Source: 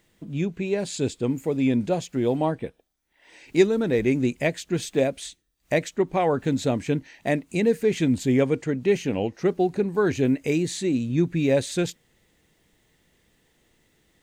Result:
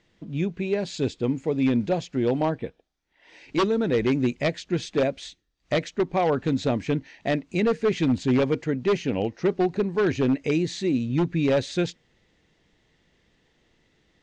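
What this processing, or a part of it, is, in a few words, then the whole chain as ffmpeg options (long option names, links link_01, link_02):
synthesiser wavefolder: -af "aeval=exprs='0.178*(abs(mod(val(0)/0.178+3,4)-2)-1)':channel_layout=same,lowpass=frequency=5900:width=0.5412,lowpass=frequency=5900:width=1.3066"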